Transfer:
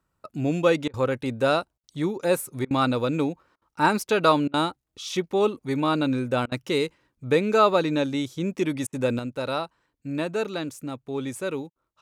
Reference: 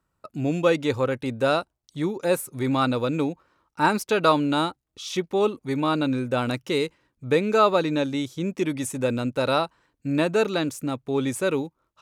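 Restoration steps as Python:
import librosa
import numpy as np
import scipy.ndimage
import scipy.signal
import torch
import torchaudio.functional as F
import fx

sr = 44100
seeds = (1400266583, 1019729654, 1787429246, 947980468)

y = fx.fix_interpolate(x, sr, at_s=(0.88, 1.78, 2.65, 3.56, 4.48, 6.46, 8.87, 11.7), length_ms=56.0)
y = fx.gain(y, sr, db=fx.steps((0.0, 0.0), (9.19, 5.5)))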